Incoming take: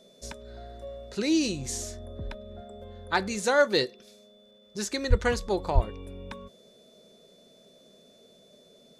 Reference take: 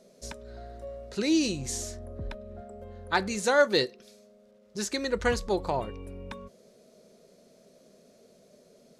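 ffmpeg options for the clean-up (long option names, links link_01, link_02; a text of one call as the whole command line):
ffmpeg -i in.wav -filter_complex "[0:a]bandreject=frequency=3500:width=30,asplit=3[link_01][link_02][link_03];[link_01]afade=type=out:start_time=5.09:duration=0.02[link_04];[link_02]highpass=frequency=140:width=0.5412,highpass=frequency=140:width=1.3066,afade=type=in:start_time=5.09:duration=0.02,afade=type=out:start_time=5.21:duration=0.02[link_05];[link_03]afade=type=in:start_time=5.21:duration=0.02[link_06];[link_04][link_05][link_06]amix=inputs=3:normalize=0,asplit=3[link_07][link_08][link_09];[link_07]afade=type=out:start_time=5.74:duration=0.02[link_10];[link_08]highpass=frequency=140:width=0.5412,highpass=frequency=140:width=1.3066,afade=type=in:start_time=5.74:duration=0.02,afade=type=out:start_time=5.86:duration=0.02[link_11];[link_09]afade=type=in:start_time=5.86:duration=0.02[link_12];[link_10][link_11][link_12]amix=inputs=3:normalize=0" out.wav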